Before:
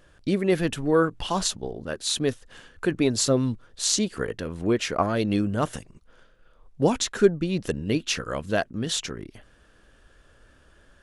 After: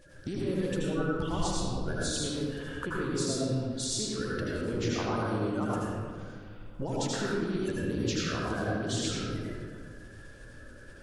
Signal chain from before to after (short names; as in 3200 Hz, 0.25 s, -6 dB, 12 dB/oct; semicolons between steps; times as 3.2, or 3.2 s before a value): bin magnitudes rounded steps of 30 dB; 1.05–1.81 low shelf 140 Hz +12 dB; compressor 6:1, threshold -35 dBFS, peak gain reduction 21 dB; reverb RT60 1.9 s, pre-delay 74 ms, DRR -6 dB